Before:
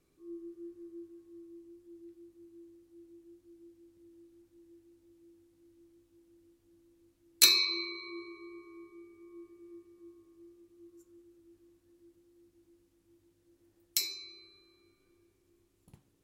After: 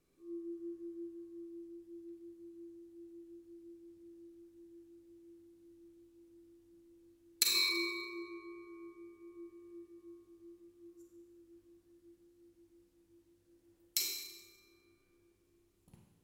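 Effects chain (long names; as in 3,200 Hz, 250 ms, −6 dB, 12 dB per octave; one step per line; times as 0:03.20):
0:07.43–0:08.05: compressor whose output falls as the input rises −29 dBFS, ratio −1
four-comb reverb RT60 0.98 s, combs from 32 ms, DRR 2 dB
level −4 dB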